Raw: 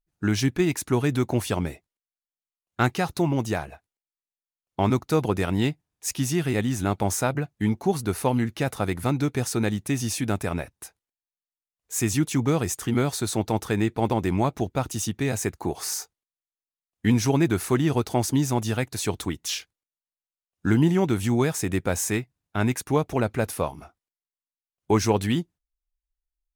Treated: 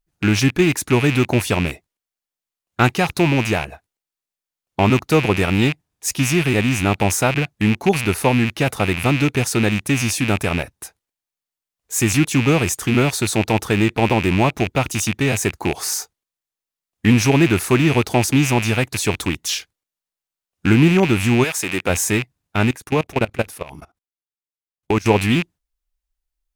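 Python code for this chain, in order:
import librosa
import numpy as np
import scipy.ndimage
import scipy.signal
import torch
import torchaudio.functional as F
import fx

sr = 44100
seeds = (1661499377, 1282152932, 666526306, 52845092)

y = fx.rattle_buzz(x, sr, strikes_db=-34.0, level_db=-19.0)
y = fx.highpass(y, sr, hz=fx.line((21.43, 1100.0), (21.88, 290.0)), slope=6, at=(21.43, 21.88), fade=0.02)
y = fx.level_steps(y, sr, step_db=22, at=(22.61, 25.06))
y = F.gain(torch.from_numpy(y), 6.5).numpy()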